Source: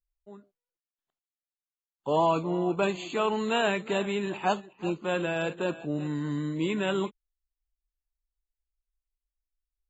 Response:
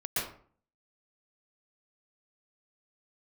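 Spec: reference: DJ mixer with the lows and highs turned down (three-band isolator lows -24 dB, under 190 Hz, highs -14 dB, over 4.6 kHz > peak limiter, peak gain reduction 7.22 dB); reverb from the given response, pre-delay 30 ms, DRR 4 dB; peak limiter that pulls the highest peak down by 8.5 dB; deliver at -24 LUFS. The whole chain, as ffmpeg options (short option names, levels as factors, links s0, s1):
-filter_complex "[0:a]alimiter=limit=0.0944:level=0:latency=1,asplit=2[s0][s1];[1:a]atrim=start_sample=2205,adelay=30[s2];[s1][s2]afir=irnorm=-1:irlink=0,volume=0.299[s3];[s0][s3]amix=inputs=2:normalize=0,acrossover=split=190 4600:gain=0.0631 1 0.2[s4][s5][s6];[s4][s5][s6]amix=inputs=3:normalize=0,volume=2.82,alimiter=limit=0.188:level=0:latency=1"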